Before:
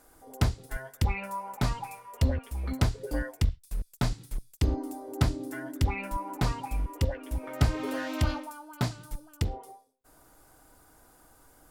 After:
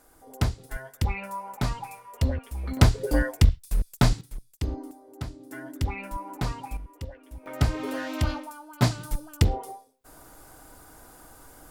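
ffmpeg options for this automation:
ffmpeg -i in.wav -af "asetnsamples=nb_out_samples=441:pad=0,asendcmd='2.77 volume volume 8dB;4.21 volume volume -3.5dB;4.91 volume volume -10dB;5.51 volume volume -1.5dB;6.77 volume volume -10dB;7.46 volume volume 1dB;8.82 volume volume 8.5dB',volume=0.5dB" out.wav

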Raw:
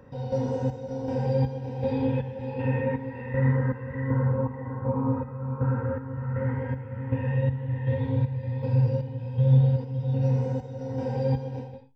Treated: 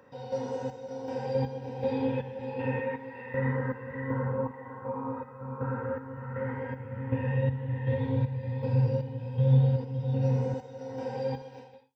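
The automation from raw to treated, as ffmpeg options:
ffmpeg -i in.wav -af "asetnsamples=nb_out_samples=441:pad=0,asendcmd='1.35 highpass f 290;2.8 highpass f 690;3.34 highpass f 320;4.51 highpass f 770;5.41 highpass f 360;6.8 highpass f 130;10.54 highpass f 540;11.42 highpass f 1200',highpass=frequency=610:poles=1" out.wav

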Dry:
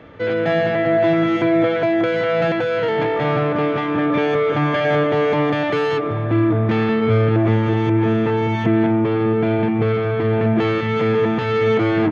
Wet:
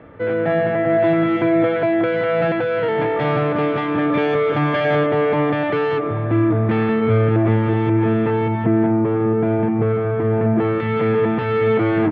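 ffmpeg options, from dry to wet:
ffmpeg -i in.wav -af "asetnsamples=nb_out_samples=441:pad=0,asendcmd='0.9 lowpass f 2700;3.19 lowpass f 4400;5.06 lowpass f 2600;8.48 lowpass f 1500;10.8 lowpass f 2500',lowpass=1900" out.wav

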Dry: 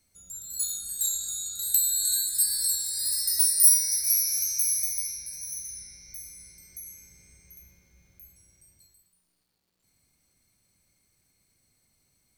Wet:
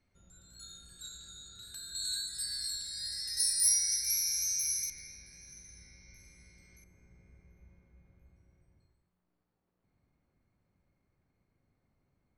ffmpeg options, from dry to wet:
ffmpeg -i in.wav -af "asetnsamples=nb_out_samples=441:pad=0,asendcmd='1.95 lowpass f 4000;3.37 lowpass f 7100;4.9 lowpass f 3000;6.84 lowpass f 1300',lowpass=2400" out.wav

